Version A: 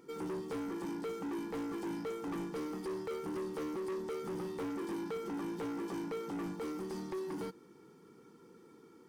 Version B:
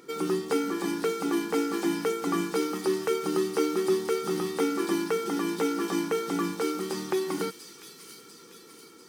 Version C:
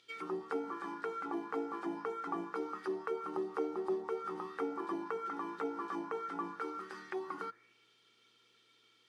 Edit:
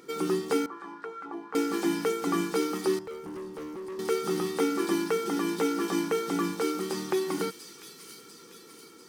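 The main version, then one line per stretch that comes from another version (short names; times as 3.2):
B
0.66–1.55 from C
2.99–3.99 from A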